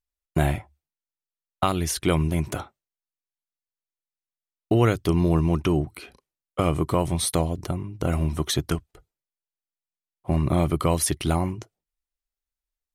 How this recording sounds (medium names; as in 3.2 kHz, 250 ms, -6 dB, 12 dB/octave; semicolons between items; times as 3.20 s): noise floor -93 dBFS; spectral tilt -5.5 dB/octave